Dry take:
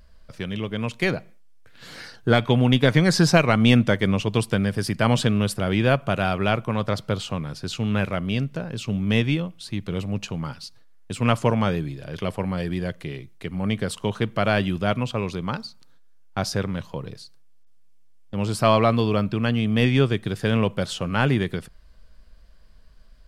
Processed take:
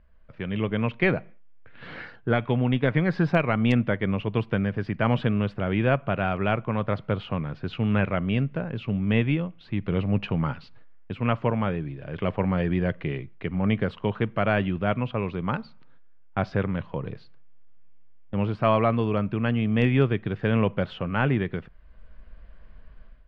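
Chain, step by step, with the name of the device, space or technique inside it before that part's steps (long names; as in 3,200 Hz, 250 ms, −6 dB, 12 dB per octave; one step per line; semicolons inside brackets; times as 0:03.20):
action camera in a waterproof case (low-pass filter 2,700 Hz 24 dB per octave; automatic gain control gain up to 12 dB; level −7 dB; AAC 128 kbit/s 44,100 Hz)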